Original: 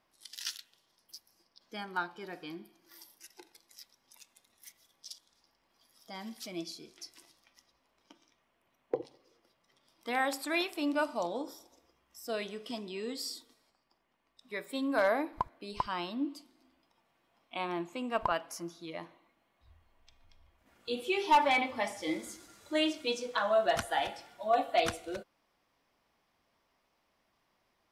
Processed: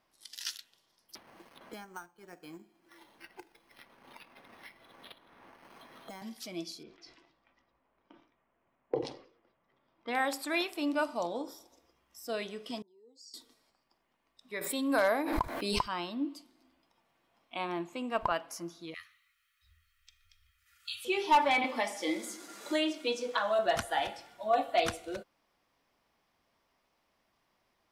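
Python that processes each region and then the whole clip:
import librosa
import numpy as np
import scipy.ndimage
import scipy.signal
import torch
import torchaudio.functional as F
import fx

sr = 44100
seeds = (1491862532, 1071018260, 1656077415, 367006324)

y = fx.chain(x, sr, fx.law_mismatch(coded='A'),
    fx.resample_bad(factor=6, down='filtered', up='hold'),
    fx.band_squash(depth_pct=100), at=(1.15, 6.22))
y = fx.chain(y, sr, fx.env_lowpass(base_hz=1800.0, full_db=-35.5),
    fx.air_absorb(metres=56.0),
    fx.sustainer(db_per_s=110.0), at=(6.83, 10.15))
y = fx.chain(y, sr, fx.spec_expand(power=1.7),
    fx.double_bandpass(hz=2400.0, octaves=2.9), at=(12.82, 13.34))
y = fx.chain(y, sr, fx.high_shelf(hz=6200.0, db=9.0),
    fx.pre_swell(db_per_s=39.0), at=(14.61, 15.88))
y = fx.chain(y, sr, fx.cheby1_bandstop(low_hz=100.0, high_hz=1300.0, order=5),
    fx.tilt_eq(slope=2.0),
    fx.comb(ms=1.6, depth=0.48), at=(18.94, 21.05))
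y = fx.chain(y, sr, fx.highpass(hz=210.0, slope=24),
    fx.band_squash(depth_pct=70), at=(21.64, 23.59))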